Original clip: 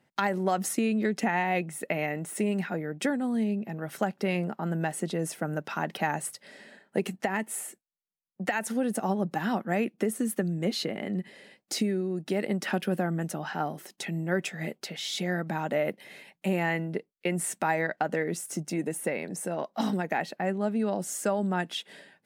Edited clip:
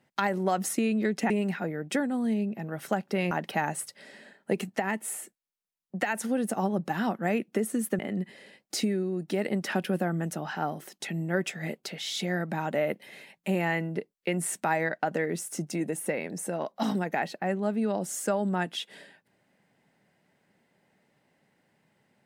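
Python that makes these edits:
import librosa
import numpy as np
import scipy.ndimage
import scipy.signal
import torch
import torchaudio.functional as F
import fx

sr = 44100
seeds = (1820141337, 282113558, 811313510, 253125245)

y = fx.edit(x, sr, fx.cut(start_s=1.3, length_s=1.1),
    fx.cut(start_s=4.41, length_s=1.36),
    fx.cut(start_s=10.45, length_s=0.52), tone=tone)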